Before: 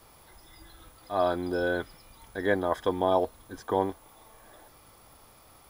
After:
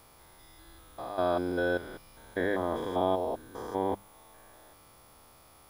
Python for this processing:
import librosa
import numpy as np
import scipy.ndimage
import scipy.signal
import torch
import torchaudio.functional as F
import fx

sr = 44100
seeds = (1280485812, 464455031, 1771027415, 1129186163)

y = fx.spec_steps(x, sr, hold_ms=200)
y = fx.hum_notches(y, sr, base_hz=50, count=4)